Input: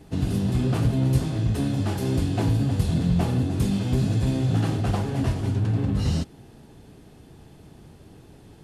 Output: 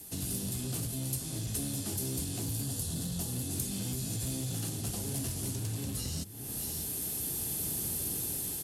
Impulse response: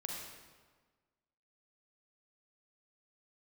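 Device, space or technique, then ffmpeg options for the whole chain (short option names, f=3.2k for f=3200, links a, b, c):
FM broadcast chain: -filter_complex "[0:a]bandreject=f=50:t=h:w=6,bandreject=f=100:t=h:w=6,bandreject=f=150:t=h:w=6,bandreject=f=200:t=h:w=6,acrossover=split=10000[a][b];[b]acompressor=threshold=-59dB:ratio=4:attack=1:release=60[c];[a][c]amix=inputs=2:normalize=0,asettb=1/sr,asplit=3[d][e][f];[d]atrim=end=2.644[g];[e]atrim=start=2.64:end=3.32,asetpts=PTS-STARTPTS,afade=t=in:d=0.004:c=qsin,afade=t=out:st=0.676:d=0.004:c=qsin,equalizer=f=2.3k:t=o:w=0.22:g=-12[h];[f]atrim=start=3.316[i];[g][h]acrossfade=d=0.004:c1=hsin:c2=qsin[j];[j][i]acrossfade=d=0.004:c1=qsin:c2=hsin,highpass=42,aecho=1:1:613:0.0631,dynaudnorm=f=230:g=9:m=16dB,acrossover=split=500|2800[k][l][m];[k]acompressor=threshold=-24dB:ratio=4[n];[l]acompressor=threshold=-47dB:ratio=4[o];[m]acompressor=threshold=-50dB:ratio=4[p];[n][o][p]amix=inputs=3:normalize=0,aemphasis=mode=production:type=75fm,alimiter=limit=-19dB:level=0:latency=1:release=392,asoftclip=type=hard:threshold=-23dB,lowpass=f=15k:w=0.5412,lowpass=f=15k:w=1.3066,aemphasis=mode=production:type=75fm,volume=-7.5dB"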